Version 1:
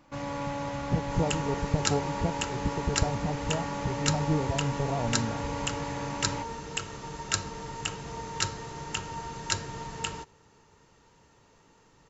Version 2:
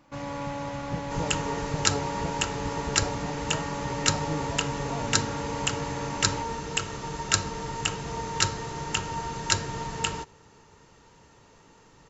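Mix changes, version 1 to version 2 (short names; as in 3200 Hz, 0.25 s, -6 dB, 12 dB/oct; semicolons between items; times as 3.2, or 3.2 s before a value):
speech -6.0 dB; second sound +5.0 dB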